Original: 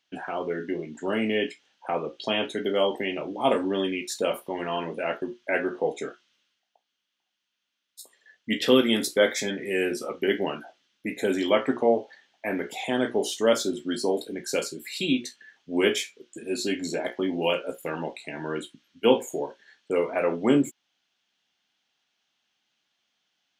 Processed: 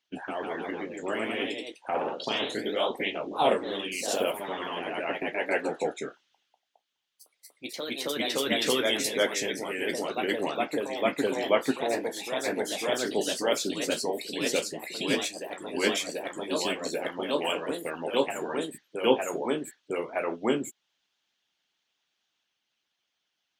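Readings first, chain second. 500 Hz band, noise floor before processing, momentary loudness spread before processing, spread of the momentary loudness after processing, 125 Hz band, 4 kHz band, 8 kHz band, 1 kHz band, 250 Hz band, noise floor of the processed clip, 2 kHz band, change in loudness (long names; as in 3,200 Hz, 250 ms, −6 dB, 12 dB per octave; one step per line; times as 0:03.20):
−3.0 dB, −80 dBFS, 11 LU, 9 LU, −6.0 dB, +0.5 dB, +2.0 dB, +0.5 dB, −5.0 dB, −81 dBFS, −0.5 dB, −2.5 dB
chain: harmonic and percussive parts rebalanced harmonic −15 dB
delay with pitch and tempo change per echo 163 ms, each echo +1 semitone, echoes 3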